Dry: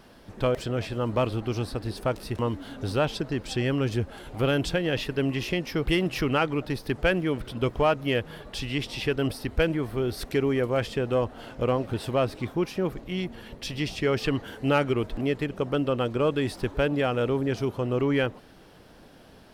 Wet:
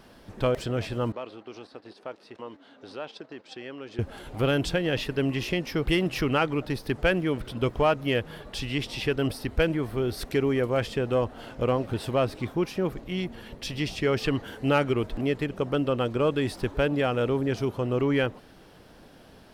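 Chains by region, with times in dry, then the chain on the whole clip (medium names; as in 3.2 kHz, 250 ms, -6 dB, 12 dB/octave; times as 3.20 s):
1.12–3.99 s: gate -34 dBFS, range -10 dB + compression 2:1, threshold -39 dBFS + band-pass 330–4900 Hz
whole clip: none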